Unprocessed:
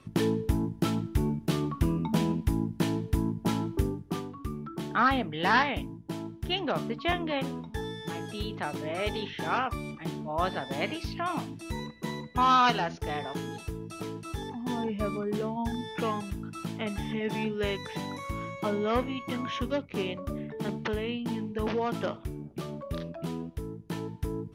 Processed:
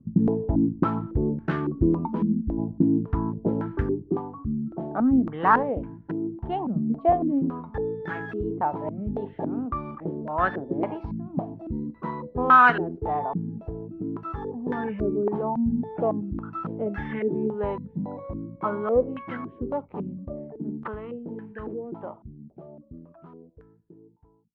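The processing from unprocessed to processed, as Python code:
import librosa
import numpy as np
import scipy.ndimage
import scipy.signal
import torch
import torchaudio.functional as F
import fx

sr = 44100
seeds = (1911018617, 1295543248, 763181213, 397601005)

y = fx.fade_out_tail(x, sr, length_s=7.57)
y = fx.fixed_phaser(y, sr, hz=310.0, stages=4, at=(2.05, 2.57), fade=0.02)
y = fx.filter_held_lowpass(y, sr, hz=3.6, low_hz=210.0, high_hz=1600.0)
y = y * librosa.db_to_amplitude(1.0)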